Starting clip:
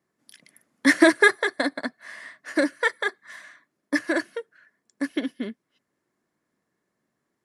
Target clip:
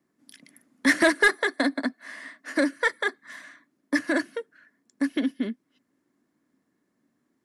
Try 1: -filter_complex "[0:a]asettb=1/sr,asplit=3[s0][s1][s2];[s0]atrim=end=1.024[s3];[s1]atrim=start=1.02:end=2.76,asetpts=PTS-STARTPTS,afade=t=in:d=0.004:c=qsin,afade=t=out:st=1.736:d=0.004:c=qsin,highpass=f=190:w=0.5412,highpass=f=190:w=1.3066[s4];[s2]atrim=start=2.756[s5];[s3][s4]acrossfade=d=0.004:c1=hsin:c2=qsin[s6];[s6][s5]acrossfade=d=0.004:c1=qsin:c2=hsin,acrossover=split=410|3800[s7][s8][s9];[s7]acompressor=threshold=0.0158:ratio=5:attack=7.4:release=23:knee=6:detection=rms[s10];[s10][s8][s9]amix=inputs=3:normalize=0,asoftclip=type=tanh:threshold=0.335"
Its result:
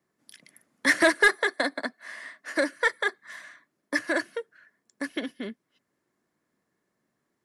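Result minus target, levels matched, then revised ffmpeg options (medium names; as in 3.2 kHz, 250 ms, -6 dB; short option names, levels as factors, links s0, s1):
250 Hz band -6.0 dB
-filter_complex "[0:a]asettb=1/sr,asplit=3[s0][s1][s2];[s0]atrim=end=1.024[s3];[s1]atrim=start=1.02:end=2.76,asetpts=PTS-STARTPTS,afade=t=in:d=0.004:c=qsin,afade=t=out:st=1.736:d=0.004:c=qsin,highpass=f=190:w=0.5412,highpass=f=190:w=1.3066[s4];[s2]atrim=start=2.756[s5];[s3][s4]acrossfade=d=0.004:c1=hsin:c2=qsin[s6];[s6][s5]acrossfade=d=0.004:c1=qsin:c2=hsin,acrossover=split=410|3800[s7][s8][s9];[s7]acompressor=threshold=0.0158:ratio=5:attack=7.4:release=23:knee=6:detection=rms,equalizer=f=270:t=o:w=0.66:g=13.5[s10];[s10][s8][s9]amix=inputs=3:normalize=0,asoftclip=type=tanh:threshold=0.335"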